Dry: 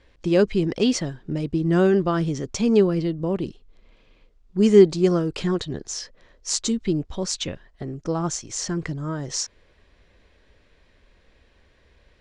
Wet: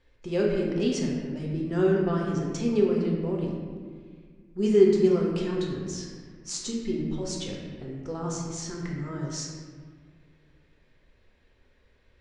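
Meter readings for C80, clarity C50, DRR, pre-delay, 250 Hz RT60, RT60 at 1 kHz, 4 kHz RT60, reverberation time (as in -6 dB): 2.5 dB, 1.0 dB, -2.5 dB, 4 ms, 2.5 s, 1.6 s, 1.1 s, 1.7 s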